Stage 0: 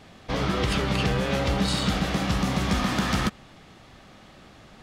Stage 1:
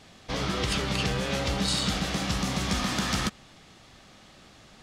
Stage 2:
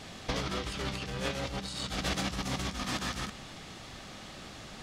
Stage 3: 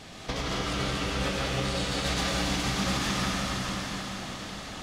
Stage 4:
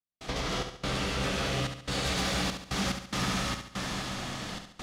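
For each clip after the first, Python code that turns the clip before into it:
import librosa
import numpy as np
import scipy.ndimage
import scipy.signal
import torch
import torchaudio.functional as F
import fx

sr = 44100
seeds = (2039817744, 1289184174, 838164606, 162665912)

y1 = fx.peak_eq(x, sr, hz=6800.0, db=8.0, octaves=2.2)
y1 = y1 * librosa.db_to_amplitude(-4.5)
y2 = fx.over_compress(y1, sr, threshold_db=-33.0, ratio=-0.5)
y3 = y2 + 10.0 ** (-8.0 / 20.0) * np.pad(y2, (int(600 * sr / 1000.0), 0))[:len(y2)]
y3 = fx.rev_plate(y3, sr, seeds[0], rt60_s=4.5, hf_ratio=0.9, predelay_ms=85, drr_db=-4.5)
y4 = fx.step_gate(y3, sr, bpm=72, pattern='.xx.xxxx.xxx.x', floor_db=-60.0, edge_ms=4.5)
y4 = 10.0 ** (-22.5 / 20.0) * np.tanh(y4 / 10.0 ** (-22.5 / 20.0))
y4 = fx.echo_feedback(y4, sr, ms=70, feedback_pct=45, wet_db=-7.5)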